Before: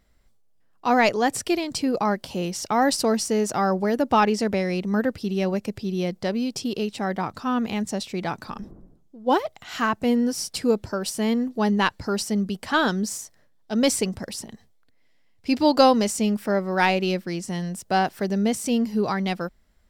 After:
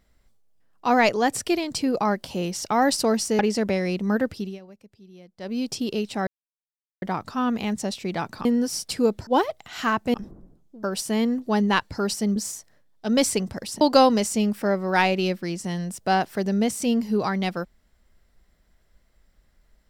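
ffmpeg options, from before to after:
-filter_complex "[0:a]asplit=11[a][b][c][d][e][f][g][h][i][j][k];[a]atrim=end=3.392[l];[b]atrim=start=4.228:end=5.43,asetpts=PTS-STARTPTS,afade=t=out:st=0.952:d=0.25:silence=0.0841395[m];[c]atrim=start=5.43:end=6.21,asetpts=PTS-STARTPTS,volume=-21.5dB[n];[d]atrim=start=6.21:end=7.11,asetpts=PTS-STARTPTS,afade=t=in:d=0.25:silence=0.0841395,afade=t=out:st=0.896:d=0.004:c=hsin,apad=pad_dur=0.75[o];[e]atrim=start=7.11:end=8.542,asetpts=PTS-STARTPTS,afade=t=in:d=0.004:c=hsin[p];[f]atrim=start=10.098:end=10.922[q];[g]atrim=start=9.228:end=10.102[r];[h]atrim=start=8.538:end=9.232[s];[i]atrim=start=10.918:end=12.452[t];[j]atrim=start=13.018:end=14.472[u];[k]atrim=start=15.648[v];[m][n][o][p]concat=n=4:v=0:a=1[w];[l][w]acrossfade=d=0.004:c1=hsin:c2=hsin[x];[x][q]acrossfade=d=0.004:c1=hsin:c2=hsin[y];[y][r]acrossfade=d=0.004:c1=hsin:c2=hsin[z];[z][s]acrossfade=d=0.004:c1=hsin:c2=hsin[aa];[aa][t]acrossfade=d=0.004:c1=hsin:c2=hsin[ab];[ab][u]acrossfade=d=0.004:c1=hsin:c2=hsin[ac];[ac][v]acrossfade=d=0.004:c1=hsin:c2=hsin"

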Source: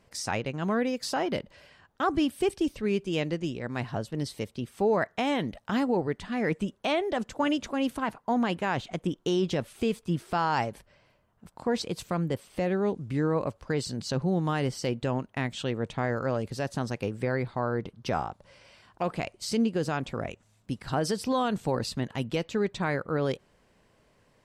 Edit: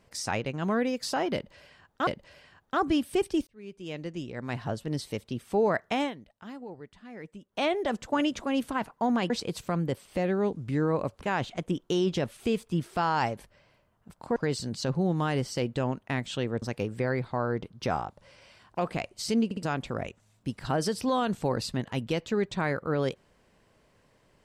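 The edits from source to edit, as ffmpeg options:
-filter_complex "[0:a]asplit=12[a][b][c][d][e][f][g][h][i][j][k][l];[a]atrim=end=2.072[m];[b]atrim=start=1.338:end=2.74,asetpts=PTS-STARTPTS,afade=t=out:st=1.398:d=0.004:c=hsin[n];[c]atrim=start=2.74:end=5.41,asetpts=PTS-STARTPTS,afade=t=in:d=1.23,afade=t=out:st=2.54:d=0.13:silence=0.16788[o];[d]atrim=start=5.41:end=6.76,asetpts=PTS-STARTPTS,volume=-15.5dB[p];[e]atrim=start=6.76:end=8.572,asetpts=PTS-STARTPTS,afade=t=in:d=0.13:silence=0.16788[q];[f]atrim=start=11.718:end=13.632[r];[g]atrim=start=8.568:end=11.722[s];[h]atrim=start=13.628:end=15.892[t];[i]atrim=start=16.848:end=19.742[u];[j]atrim=start=19.678:end=19.742[v];[k]atrim=start=19.678:end=19.742[w];[l]atrim=start=19.858[x];[n][o][p][q]concat=n=4:v=0:a=1[y];[m][y]acrossfade=d=0.004:c1=hsin:c2=hsin[z];[z][r]acrossfade=d=0.004:c1=hsin:c2=hsin[aa];[aa][s]acrossfade=d=0.004:c1=hsin:c2=hsin[ab];[ab][t]acrossfade=d=0.004:c1=hsin:c2=hsin[ac];[ac][u]acrossfade=d=0.004:c1=hsin:c2=hsin[ad];[ad][v]acrossfade=d=0.004:c1=hsin:c2=hsin[ae];[ae][w]acrossfade=d=0.004:c1=hsin:c2=hsin[af];[af][x]acrossfade=d=0.004:c1=hsin:c2=hsin"

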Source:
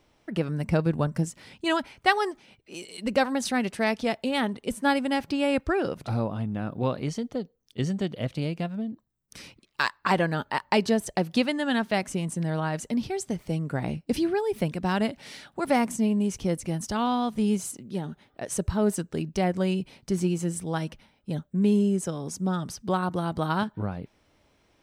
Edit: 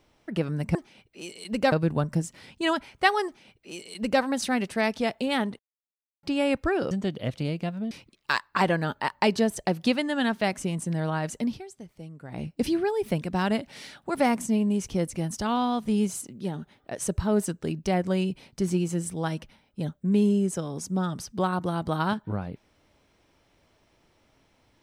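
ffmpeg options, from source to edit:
-filter_complex "[0:a]asplit=9[a][b][c][d][e][f][g][h][i];[a]atrim=end=0.752[j];[b]atrim=start=2.278:end=3.252[k];[c]atrim=start=0.748:end=4.62,asetpts=PTS-STARTPTS,afade=t=out:st=3.868:d=0.004:c=hsin[l];[d]atrim=start=4.62:end=5.26,asetpts=PTS-STARTPTS,volume=0[m];[e]atrim=start=5.26:end=5.942,asetpts=PTS-STARTPTS,afade=t=in:d=0.004:c=hsin[n];[f]atrim=start=7.878:end=8.882[o];[g]atrim=start=9.408:end=13.15,asetpts=PTS-STARTPTS,afade=t=out:st=3.532:d=0.21:silence=0.211349[p];[h]atrim=start=13.15:end=13.78,asetpts=PTS-STARTPTS,volume=-13.5dB[q];[i]atrim=start=13.78,asetpts=PTS-STARTPTS,afade=t=in:d=0.21:silence=0.211349[r];[j][k]acrossfade=d=0.004:c1=hsin:c2=hsin[s];[l][m][n]concat=n=3:v=0:a=1[t];[s][t]acrossfade=d=0.004:c1=hsin:c2=hsin[u];[u][o]acrossfade=d=0.004:c1=hsin:c2=hsin[v];[p][q][r]concat=n=3:v=0:a=1[w];[v][w]acrossfade=d=0.004:c1=hsin:c2=hsin"

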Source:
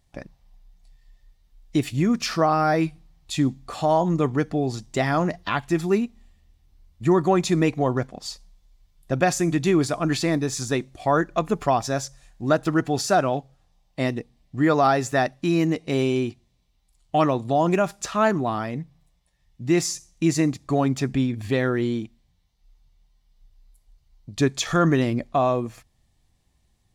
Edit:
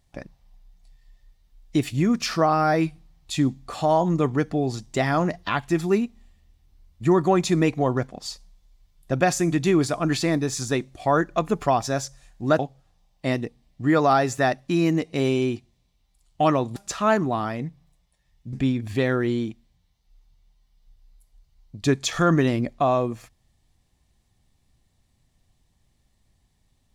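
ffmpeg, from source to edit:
-filter_complex "[0:a]asplit=4[a][b][c][d];[a]atrim=end=12.592[e];[b]atrim=start=13.328:end=17.502[f];[c]atrim=start=17.898:end=19.672[g];[d]atrim=start=21.068[h];[e][f]acrossfade=d=0.004:c1=hsin:c2=hsin[i];[i][g]acrossfade=d=0.004:c1=hsin:c2=hsin[j];[j][h]acrossfade=d=0.004:c1=hsin:c2=hsin"

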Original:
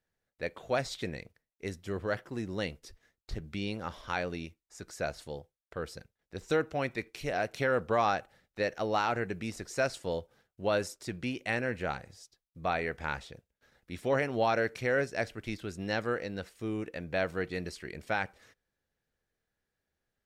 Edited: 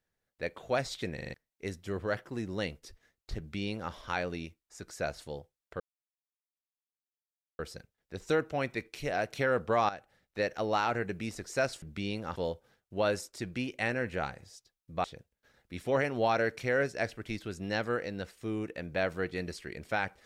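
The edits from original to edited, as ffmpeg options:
-filter_complex "[0:a]asplit=11[a][b][c][d][e][f][g][h][i][j][k];[a]atrim=end=1.182[l];[b]atrim=start=1.138:end=1.182[m];[c]atrim=start=1.138:end=1.182[n];[d]atrim=start=1.138:end=1.182[o];[e]atrim=start=1.138:end=1.182[p];[f]atrim=start=1.338:end=5.8,asetpts=PTS-STARTPTS,afade=t=out:st=4.458:d=0.004:c=hsin,apad=pad_dur=1.79[q];[g]atrim=start=5.8:end=8.1,asetpts=PTS-STARTPTS,afade=t=in:d=0.004:c=hsin,afade=t=out:st=2.296:d=0.004:c=hsin:silence=0.223872[r];[h]atrim=start=8.1:end=10.032,asetpts=PTS-STARTPTS,afade=t=in:d=0.52:silence=0.223872[s];[i]atrim=start=3.388:end=3.932[t];[j]atrim=start=10.028:end=12.712[u];[k]atrim=start=13.218[v];[l][m]acrossfade=d=0.004:c1=hsin:c2=hsin[w];[w][n]acrossfade=d=0.004:c1=hsin:c2=hsin[x];[x][o]acrossfade=d=0.004:c1=hsin:c2=hsin[y];[y][p]acrossfade=d=0.004:c1=hsin:c2=hsin[z];[q][r][s]concat=n=3:v=0:a=1[aa];[z][aa]acrossfade=d=0.004:c1=hsin:c2=hsin[ab];[ab][t]acrossfade=d=0.004:c1=hsin:c2=hsin[ac];[ac][u]acrossfade=d=0.004:c1=hsin:c2=hsin[ad];[ad][v]acrossfade=d=0.004:c1=hsin:c2=hsin"

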